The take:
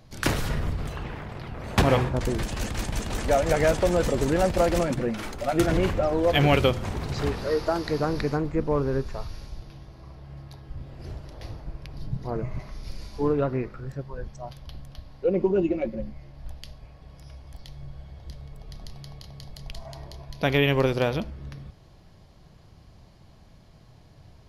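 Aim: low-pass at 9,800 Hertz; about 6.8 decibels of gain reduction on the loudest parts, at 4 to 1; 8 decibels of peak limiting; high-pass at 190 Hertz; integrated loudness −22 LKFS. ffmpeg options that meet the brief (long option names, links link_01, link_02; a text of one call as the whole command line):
ffmpeg -i in.wav -af "highpass=190,lowpass=9800,acompressor=threshold=-25dB:ratio=4,volume=11dB,alimiter=limit=-9.5dB:level=0:latency=1" out.wav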